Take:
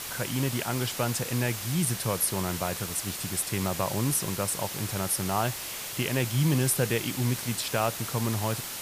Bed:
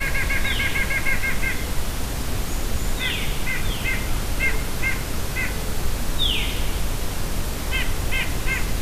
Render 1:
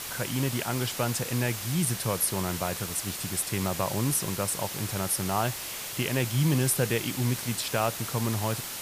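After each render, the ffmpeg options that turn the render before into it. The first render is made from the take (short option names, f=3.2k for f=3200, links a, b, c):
-af anull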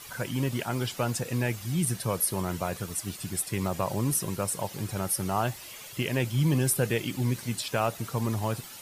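-af "afftdn=nr=11:nf=-37"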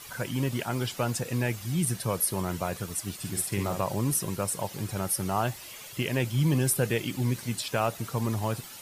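-filter_complex "[0:a]asettb=1/sr,asplit=3[a][b][c];[a]atrim=end=3.194[d];[b]atrim=start=3.19:end=3.8,asetpts=PTS-STARTPTS,afade=t=in:d=0.004:c=qsin,afade=t=out:st=0.606:d=0.004:c=qsin,asplit=2[e][f];[f]adelay=50,volume=-6dB[g];[e][g]amix=inputs=2:normalize=0,atrim=end_sample=26901[h];[c]atrim=start=3.796[i];[d][h]acrossfade=d=0.004:c1=hsin:c2=qsin[j];[j][i]acrossfade=d=0.004:c1=qsin:c2=hsin"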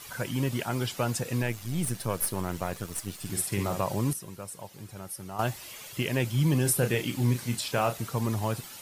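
-filter_complex "[0:a]asettb=1/sr,asplit=3[a][b][c];[a]atrim=end=1.424[d];[b]atrim=start=1.42:end=3.3,asetpts=PTS-STARTPTS,afade=t=in:d=0.004:c=qsin,afade=t=out:st=1.876:d=0.004:c=qsin,aeval=exprs='if(lt(val(0),0),0.447*val(0),val(0))':c=same[e];[c]atrim=start=3.296[f];[d][e]acrossfade=d=0.004:c1=hsin:c2=qsin[g];[g][f]acrossfade=d=0.004:c1=qsin:c2=hsin,asettb=1/sr,asplit=3[h][i][j];[h]atrim=end=6.624[k];[i]atrim=start=6.62:end=8.04,asetpts=PTS-STARTPTS,afade=t=in:d=0.004:c=qsin,afade=t=out:st=1.416:d=0.004:c=qsin,asplit=2[l][m];[m]adelay=33,volume=-8dB[n];[l][n]amix=inputs=2:normalize=0,atrim=end_sample=62622[o];[j]atrim=start=8.036[p];[k][o]acrossfade=d=0.004:c1=hsin:c2=qsin[q];[q][p]acrossfade=d=0.004:c1=qsin:c2=hsin,asplit=3[r][s][t];[r]atrim=end=4.132[u];[s]atrim=start=4.128:end=5.392,asetpts=PTS-STARTPTS,volume=-10.5dB[v];[t]atrim=start=5.388[w];[u][v]acrossfade=d=0.004:c1=hsin:c2=hsin[x];[x][w]acrossfade=d=0.004:c1=hsin:c2=hsin"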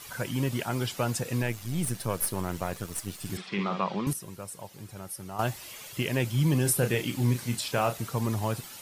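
-filter_complex "[0:a]asettb=1/sr,asplit=3[a][b][c];[a]atrim=end=3.374[d];[b]atrim=start=3.37:end=4.07,asetpts=PTS-STARTPTS,afade=t=in:d=0.004:c=qsin,afade=t=out:st=0.696:d=0.004:c=qsin,highpass=f=190:w=0.5412,highpass=f=190:w=1.3066,equalizer=f=190:t=q:w=4:g=7,equalizer=f=290:t=q:w=4:g=-6,equalizer=f=600:t=q:w=4:g=-5,equalizer=f=1.2k:t=q:w=4:g=6,equalizer=f=2.3k:t=q:w=4:g=4,equalizer=f=3.4k:t=q:w=4:g=5,lowpass=f=4.4k:w=0.5412,lowpass=f=4.4k:w=1.3066[e];[c]atrim=start=4.066[f];[d][e]acrossfade=d=0.004:c1=hsin:c2=qsin[g];[g][f]acrossfade=d=0.004:c1=qsin:c2=hsin"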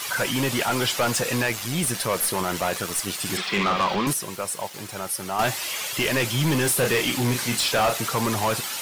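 -filter_complex "[0:a]aeval=exprs='val(0)*gte(abs(val(0)),0.00237)':c=same,asplit=2[a][b];[b]highpass=f=720:p=1,volume=23dB,asoftclip=type=tanh:threshold=-13dB[c];[a][c]amix=inputs=2:normalize=0,lowpass=f=7.6k:p=1,volume=-6dB"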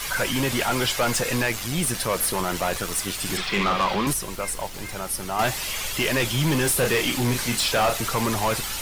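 -filter_complex "[1:a]volume=-16dB[a];[0:a][a]amix=inputs=2:normalize=0"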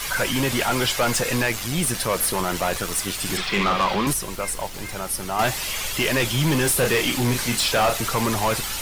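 -af "volume=1.5dB"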